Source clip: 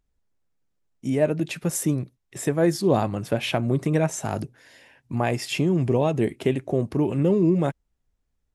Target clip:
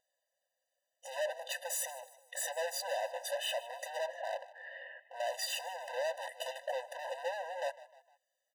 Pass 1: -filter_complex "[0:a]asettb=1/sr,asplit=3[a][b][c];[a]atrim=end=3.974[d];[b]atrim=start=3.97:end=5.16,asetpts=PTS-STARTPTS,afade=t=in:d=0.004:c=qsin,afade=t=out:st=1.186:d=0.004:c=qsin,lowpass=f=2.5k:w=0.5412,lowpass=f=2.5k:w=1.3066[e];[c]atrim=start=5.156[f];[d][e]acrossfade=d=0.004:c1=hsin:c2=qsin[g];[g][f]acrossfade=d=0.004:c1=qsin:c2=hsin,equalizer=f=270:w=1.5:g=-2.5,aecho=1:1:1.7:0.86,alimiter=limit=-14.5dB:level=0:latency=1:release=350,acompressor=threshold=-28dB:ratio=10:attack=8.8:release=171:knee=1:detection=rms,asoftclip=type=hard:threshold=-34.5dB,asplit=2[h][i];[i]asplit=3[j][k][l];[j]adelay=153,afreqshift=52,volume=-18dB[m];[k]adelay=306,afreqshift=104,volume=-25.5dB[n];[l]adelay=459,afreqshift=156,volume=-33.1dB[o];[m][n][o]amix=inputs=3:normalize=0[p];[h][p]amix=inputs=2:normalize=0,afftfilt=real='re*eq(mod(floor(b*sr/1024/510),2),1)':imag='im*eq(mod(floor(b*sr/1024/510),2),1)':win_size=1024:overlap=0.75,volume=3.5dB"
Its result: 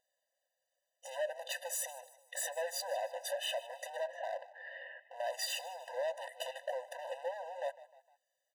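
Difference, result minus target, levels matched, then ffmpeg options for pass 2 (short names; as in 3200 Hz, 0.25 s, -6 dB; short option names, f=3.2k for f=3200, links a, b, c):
compressor: peak gain reduction +10.5 dB
-filter_complex "[0:a]asettb=1/sr,asplit=3[a][b][c];[a]atrim=end=3.974[d];[b]atrim=start=3.97:end=5.16,asetpts=PTS-STARTPTS,afade=t=in:d=0.004:c=qsin,afade=t=out:st=1.186:d=0.004:c=qsin,lowpass=f=2.5k:w=0.5412,lowpass=f=2.5k:w=1.3066[e];[c]atrim=start=5.156[f];[d][e]acrossfade=d=0.004:c1=hsin:c2=qsin[g];[g][f]acrossfade=d=0.004:c1=qsin:c2=hsin,equalizer=f=270:w=1.5:g=-2.5,aecho=1:1:1.7:0.86,alimiter=limit=-14.5dB:level=0:latency=1:release=350,asoftclip=type=hard:threshold=-34.5dB,asplit=2[h][i];[i]asplit=3[j][k][l];[j]adelay=153,afreqshift=52,volume=-18dB[m];[k]adelay=306,afreqshift=104,volume=-25.5dB[n];[l]adelay=459,afreqshift=156,volume=-33.1dB[o];[m][n][o]amix=inputs=3:normalize=0[p];[h][p]amix=inputs=2:normalize=0,afftfilt=real='re*eq(mod(floor(b*sr/1024/510),2),1)':imag='im*eq(mod(floor(b*sr/1024/510),2),1)':win_size=1024:overlap=0.75,volume=3.5dB"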